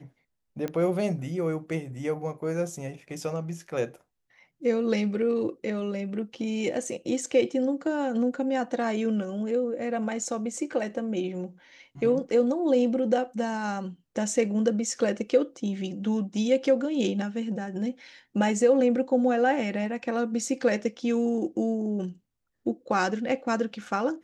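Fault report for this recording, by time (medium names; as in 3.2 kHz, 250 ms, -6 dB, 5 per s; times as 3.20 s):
0.68 s: pop -19 dBFS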